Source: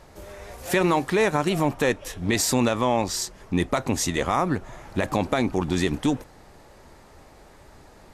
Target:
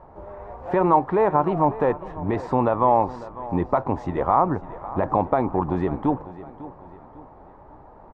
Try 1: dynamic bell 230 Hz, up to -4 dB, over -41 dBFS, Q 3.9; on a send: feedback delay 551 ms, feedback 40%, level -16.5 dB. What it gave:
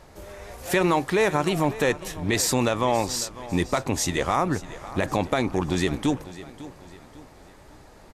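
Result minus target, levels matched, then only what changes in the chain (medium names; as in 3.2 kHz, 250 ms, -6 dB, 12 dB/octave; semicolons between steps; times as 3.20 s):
1 kHz band -4.5 dB
add after dynamic bell: resonant low-pass 950 Hz, resonance Q 2.5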